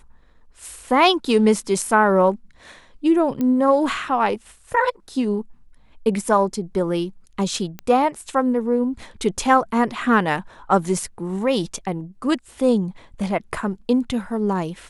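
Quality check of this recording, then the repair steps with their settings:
3.41 s: pop -13 dBFS
7.79 s: pop -17 dBFS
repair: de-click

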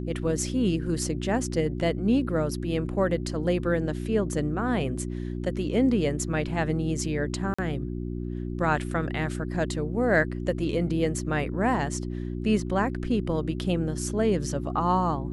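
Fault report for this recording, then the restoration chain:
hum 60 Hz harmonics 6 -32 dBFS
7.54–7.58 s: dropout 45 ms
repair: de-hum 60 Hz, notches 6; interpolate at 7.54 s, 45 ms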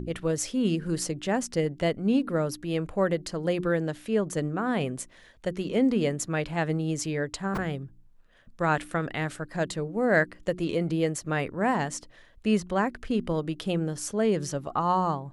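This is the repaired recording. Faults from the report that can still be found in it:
nothing left

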